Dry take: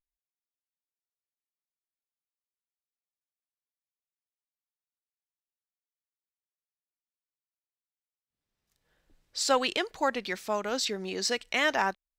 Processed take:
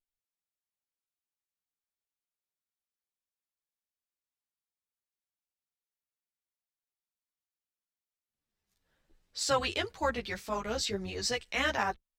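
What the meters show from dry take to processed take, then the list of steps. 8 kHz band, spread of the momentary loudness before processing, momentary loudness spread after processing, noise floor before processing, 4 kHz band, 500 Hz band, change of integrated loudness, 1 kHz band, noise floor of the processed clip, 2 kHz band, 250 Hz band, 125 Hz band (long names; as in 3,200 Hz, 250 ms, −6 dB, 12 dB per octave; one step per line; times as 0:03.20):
−3.0 dB, 6 LU, 7 LU, below −85 dBFS, −3.0 dB, −3.5 dB, −3.5 dB, −3.5 dB, below −85 dBFS, −3.5 dB, −3.5 dB, can't be measured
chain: sub-octave generator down 2 octaves, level −4 dB
tape wow and flutter 23 cents
string-ensemble chorus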